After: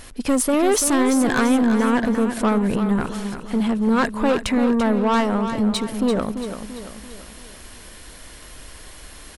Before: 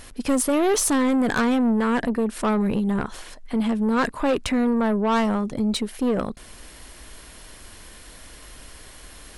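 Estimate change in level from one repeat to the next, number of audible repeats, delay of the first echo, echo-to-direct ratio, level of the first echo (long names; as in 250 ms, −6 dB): −6.5 dB, 4, 339 ms, −8.0 dB, −9.0 dB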